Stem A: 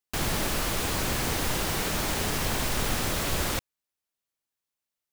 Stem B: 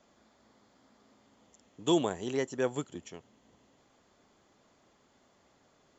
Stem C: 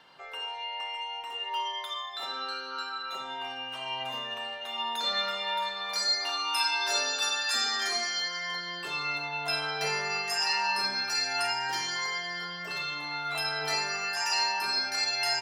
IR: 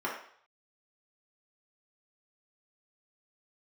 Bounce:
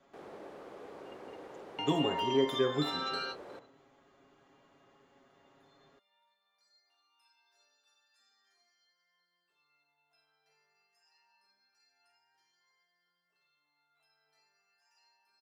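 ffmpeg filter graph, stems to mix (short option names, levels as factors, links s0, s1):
-filter_complex "[0:a]bandpass=f=470:t=q:w=1.6:csg=0,volume=0.251,asplit=2[s0][s1];[s1]volume=0.188[s2];[1:a]bass=f=250:g=10,treble=f=4000:g=-9,aecho=1:1:7.3:0.89,volume=0.596,asplit=3[s3][s4][s5];[s4]volume=0.355[s6];[2:a]adelay=650,volume=1.19[s7];[s5]apad=whole_len=708396[s8];[s7][s8]sidechaingate=range=0.00562:threshold=0.00141:ratio=16:detection=peak[s9];[3:a]atrim=start_sample=2205[s10];[s2][s6]amix=inputs=2:normalize=0[s11];[s11][s10]afir=irnorm=-1:irlink=0[s12];[s0][s3][s9][s12]amix=inputs=4:normalize=0,lowshelf=f=140:g=-7.5,acrossover=split=400[s13][s14];[s14]acompressor=threshold=0.0178:ratio=2[s15];[s13][s15]amix=inputs=2:normalize=0"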